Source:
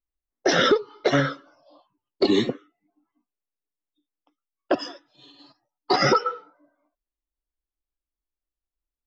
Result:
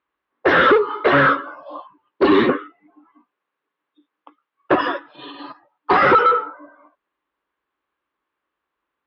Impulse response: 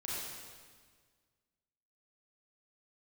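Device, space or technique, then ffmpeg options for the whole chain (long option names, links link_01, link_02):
overdrive pedal into a guitar cabinet: -filter_complex "[0:a]lowpass=5500,asplit=2[link_01][link_02];[link_02]highpass=frequency=720:poles=1,volume=28dB,asoftclip=type=tanh:threshold=-8.5dB[link_03];[link_01][link_03]amix=inputs=2:normalize=0,lowpass=frequency=1000:poles=1,volume=-6dB,highpass=94,equalizer=frequency=120:width_type=q:width=4:gain=-4,equalizer=frequency=210:width_type=q:width=4:gain=-3,equalizer=frequency=690:width_type=q:width=4:gain=-6,equalizer=frequency=1100:width_type=q:width=4:gain=7,equalizer=frequency=1600:width_type=q:width=4:gain=4,lowpass=frequency=3500:width=0.5412,lowpass=frequency=3500:width=1.3066,volume=3.5dB"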